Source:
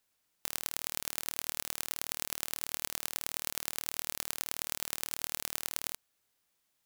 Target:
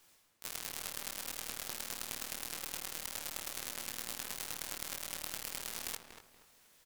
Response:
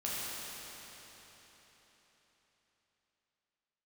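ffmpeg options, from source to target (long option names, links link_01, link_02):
-filter_complex "[0:a]areverse,acompressor=threshold=-48dB:ratio=5,areverse,flanger=delay=17.5:depth=3.5:speed=0.5,asplit=4[link_01][link_02][link_03][link_04];[link_02]asetrate=22050,aresample=44100,atempo=2,volume=-6dB[link_05];[link_03]asetrate=35002,aresample=44100,atempo=1.25992,volume=-3dB[link_06];[link_04]asetrate=66075,aresample=44100,atempo=0.66742,volume=-5dB[link_07];[link_01][link_05][link_06][link_07]amix=inputs=4:normalize=0,asplit=2[link_08][link_09];[link_09]adelay=238,lowpass=frequency=1900:poles=1,volume=-6.5dB,asplit=2[link_10][link_11];[link_11]adelay=238,lowpass=frequency=1900:poles=1,volume=0.33,asplit=2[link_12][link_13];[link_13]adelay=238,lowpass=frequency=1900:poles=1,volume=0.33,asplit=2[link_14][link_15];[link_15]adelay=238,lowpass=frequency=1900:poles=1,volume=0.33[link_16];[link_08][link_10][link_12][link_14][link_16]amix=inputs=5:normalize=0,volume=13.5dB"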